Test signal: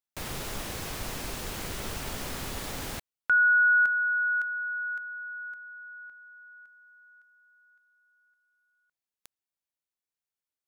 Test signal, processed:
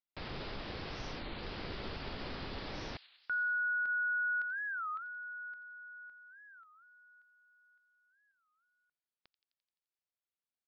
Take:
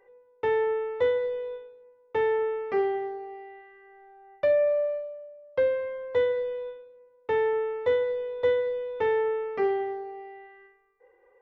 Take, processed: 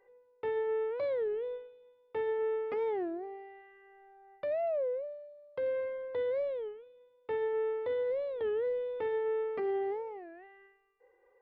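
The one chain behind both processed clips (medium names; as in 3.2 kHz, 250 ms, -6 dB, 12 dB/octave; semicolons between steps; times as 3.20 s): peak limiter -24.5 dBFS; dynamic bell 350 Hz, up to +5 dB, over -43 dBFS, Q 1; on a send: feedback echo behind a high-pass 86 ms, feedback 67%, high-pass 3.5 kHz, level -9 dB; on the sum: resampled via 11.025 kHz; warped record 33 1/3 rpm, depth 250 cents; trim -6 dB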